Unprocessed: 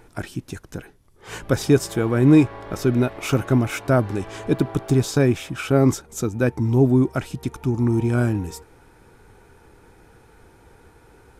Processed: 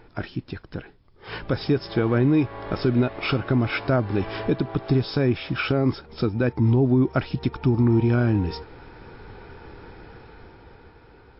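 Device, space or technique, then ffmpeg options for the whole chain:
low-bitrate web radio: -af "dynaudnorm=f=280:g=11:m=13dB,alimiter=limit=-11.5dB:level=0:latency=1:release=260" -ar 12000 -c:a libmp3lame -b:a 32k

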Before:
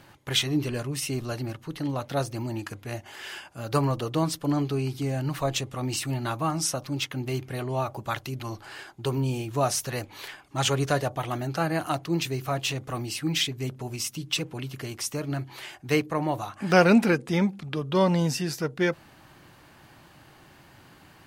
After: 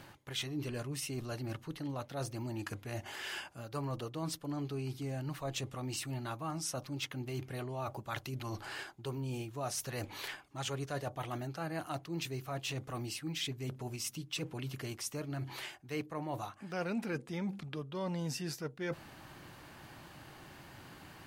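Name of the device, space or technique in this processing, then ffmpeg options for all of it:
compression on the reversed sound: -af "areverse,acompressor=threshold=-38dB:ratio=4,areverse"

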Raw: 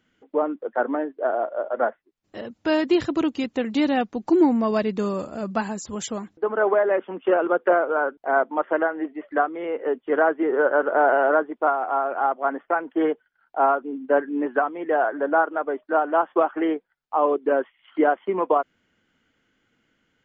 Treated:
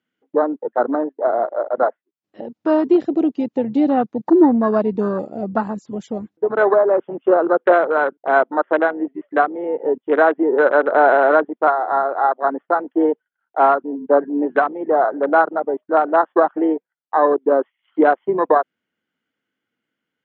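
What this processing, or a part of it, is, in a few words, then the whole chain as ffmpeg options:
over-cleaned archive recording: -af "highpass=150,lowpass=5.5k,afwtdn=0.0501,volume=5.5dB"

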